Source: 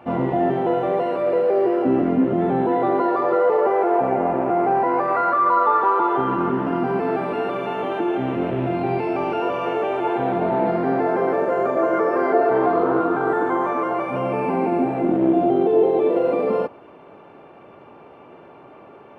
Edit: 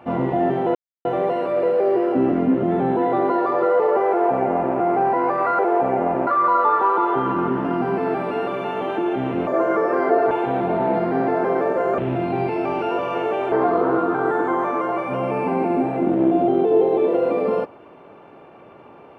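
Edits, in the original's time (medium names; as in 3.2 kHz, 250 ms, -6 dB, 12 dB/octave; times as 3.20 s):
0.75 s: insert silence 0.30 s
3.78–4.46 s: copy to 5.29 s
8.49–10.03 s: swap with 11.70–12.54 s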